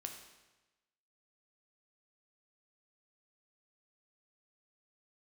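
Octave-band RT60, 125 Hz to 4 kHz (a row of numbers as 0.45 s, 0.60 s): 1.2 s, 1.1 s, 1.1 s, 1.1 s, 1.1 s, 1.0 s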